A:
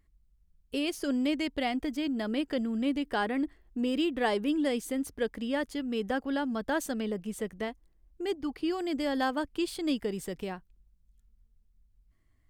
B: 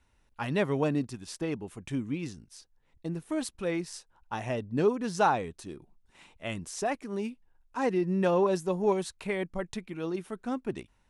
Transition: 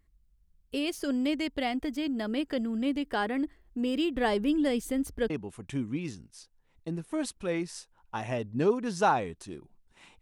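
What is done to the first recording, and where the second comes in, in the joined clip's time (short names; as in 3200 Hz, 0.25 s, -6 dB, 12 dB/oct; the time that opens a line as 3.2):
A
4.16–5.3 low shelf 140 Hz +11 dB
5.3 switch to B from 1.48 s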